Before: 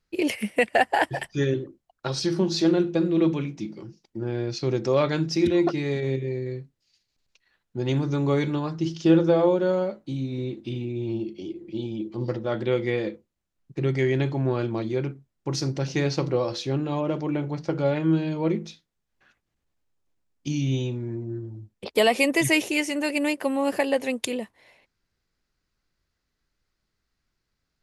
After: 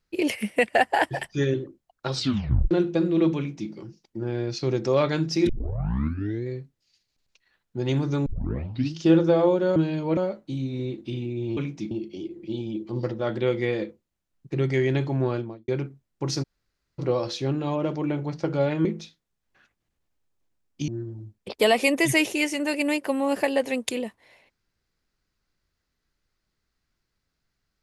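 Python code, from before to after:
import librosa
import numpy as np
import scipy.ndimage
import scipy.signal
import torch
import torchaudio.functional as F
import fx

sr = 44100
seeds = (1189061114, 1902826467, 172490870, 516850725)

y = fx.studio_fade_out(x, sr, start_s=14.51, length_s=0.42)
y = fx.edit(y, sr, fx.tape_stop(start_s=2.15, length_s=0.56),
    fx.duplicate(start_s=3.37, length_s=0.34, to_s=11.16),
    fx.tape_start(start_s=5.49, length_s=0.98),
    fx.tape_start(start_s=8.26, length_s=0.7),
    fx.room_tone_fill(start_s=15.68, length_s=0.56, crossfade_s=0.02),
    fx.move(start_s=18.1, length_s=0.41, to_s=9.76),
    fx.cut(start_s=20.54, length_s=0.7), tone=tone)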